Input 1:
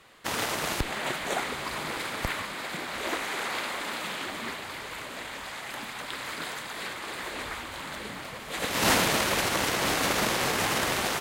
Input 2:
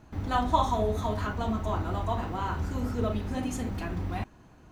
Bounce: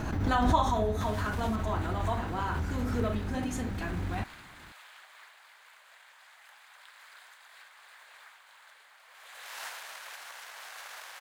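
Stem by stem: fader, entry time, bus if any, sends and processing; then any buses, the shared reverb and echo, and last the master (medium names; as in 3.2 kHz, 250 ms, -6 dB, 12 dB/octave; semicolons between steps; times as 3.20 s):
-19.0 dB, 0.75 s, no send, high-pass 700 Hz 24 dB/octave; short-mantissa float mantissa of 2-bit
-2.0 dB, 0.00 s, no send, none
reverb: none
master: peaking EQ 1.6 kHz +5 dB 0.33 oct; swell ahead of each attack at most 30 dB/s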